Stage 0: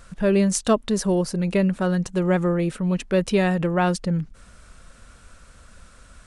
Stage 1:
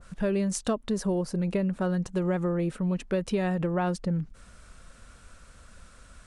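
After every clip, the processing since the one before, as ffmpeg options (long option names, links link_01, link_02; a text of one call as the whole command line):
ffmpeg -i in.wav -af "acompressor=threshold=-20dB:ratio=6,adynamicequalizer=threshold=0.00708:dfrequency=1600:dqfactor=0.7:tfrequency=1600:tqfactor=0.7:attack=5:release=100:ratio=0.375:range=3:mode=cutabove:tftype=highshelf,volume=-3dB" out.wav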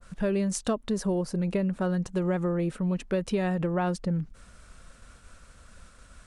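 ffmpeg -i in.wav -af "agate=range=-33dB:threshold=-49dB:ratio=3:detection=peak" out.wav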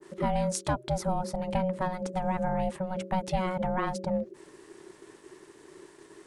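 ffmpeg -i in.wav -af "bandreject=frequency=60:width_type=h:width=6,bandreject=frequency=120:width_type=h:width=6,bandreject=frequency=180:width_type=h:width=6,bandreject=frequency=240:width_type=h:width=6,aeval=exprs='val(0)*sin(2*PI*370*n/s)':channel_layout=same,volume=2dB" out.wav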